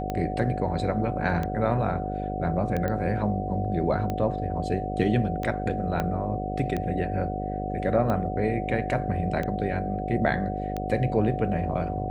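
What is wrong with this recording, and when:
buzz 50 Hz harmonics 13 -32 dBFS
tick 45 rpm -17 dBFS
tone 740 Hz -32 dBFS
2.88 pop -17 dBFS
6 pop -14 dBFS

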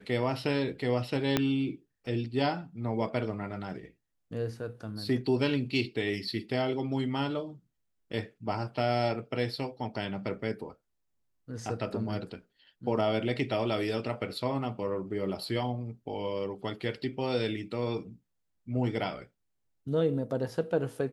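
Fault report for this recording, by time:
1.37 pop -10 dBFS

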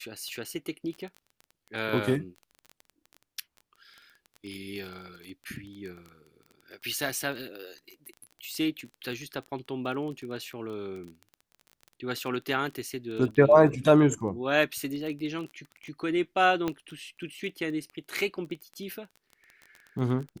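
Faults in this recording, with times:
crackle 17/s -36 dBFS
16.68 pop -16 dBFS

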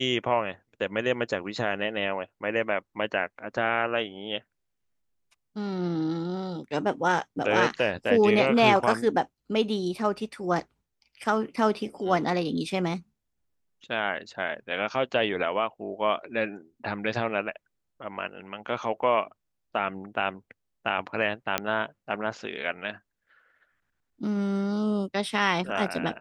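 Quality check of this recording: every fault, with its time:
21.58 pop -8 dBFS

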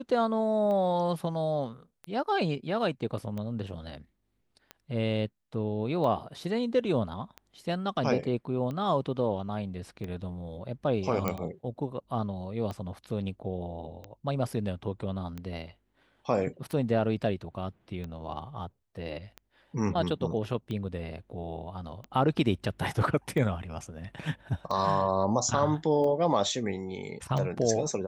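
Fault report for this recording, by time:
tick 45 rpm -25 dBFS
11.28 pop -14 dBFS

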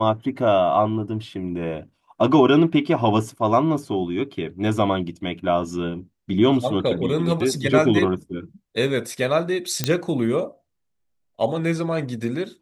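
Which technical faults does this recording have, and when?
9.84 pop -5 dBFS

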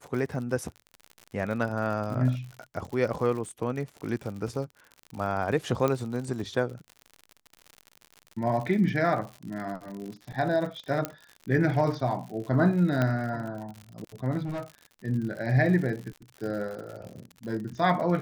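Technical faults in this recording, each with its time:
crackle 81/s -35 dBFS
5.88 pop -14 dBFS
11.05 pop -13 dBFS
13.02 pop -14 dBFS
14.45–14.7 clipped -29.5 dBFS

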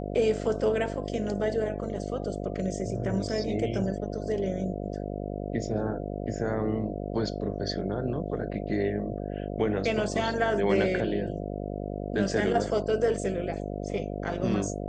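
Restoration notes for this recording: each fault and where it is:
buzz 50 Hz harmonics 14 -34 dBFS

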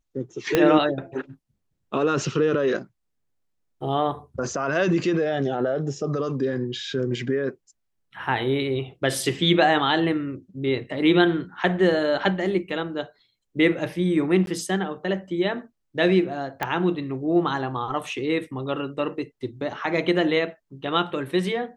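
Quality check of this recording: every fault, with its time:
0.55 pop -5 dBFS
14.46–14.47 gap 12 ms
16.63 pop -11 dBFS

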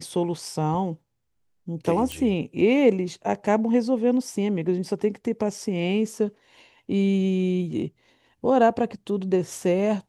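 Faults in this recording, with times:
2.12 pop -15 dBFS

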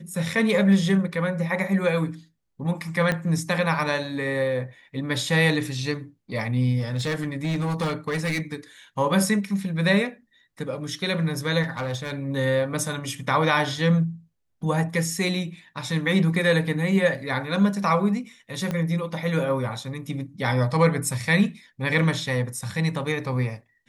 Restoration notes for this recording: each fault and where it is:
3.12 pop -12 dBFS
6.79–8.55 clipped -22 dBFS
11.62–12.13 clipped -23.5 dBFS
18.71 pop -15 dBFS

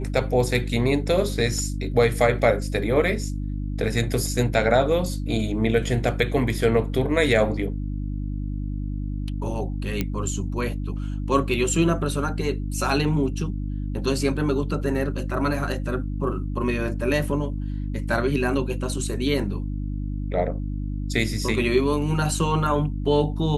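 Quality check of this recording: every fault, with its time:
hum 50 Hz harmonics 6 -28 dBFS
2.39 gap 2.6 ms
10.01 pop -10 dBFS

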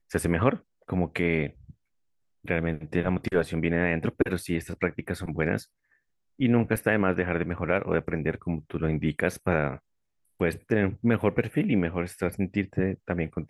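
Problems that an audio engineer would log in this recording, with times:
6.76–6.77 gap 5.3 ms

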